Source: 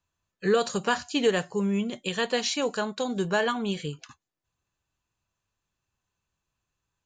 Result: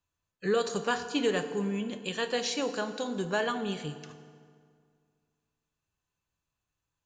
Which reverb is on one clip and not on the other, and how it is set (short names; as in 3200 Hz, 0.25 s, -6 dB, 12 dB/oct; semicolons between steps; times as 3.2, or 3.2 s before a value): FDN reverb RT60 2.1 s, low-frequency decay 1.05×, high-frequency decay 0.7×, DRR 9 dB; gain -4.5 dB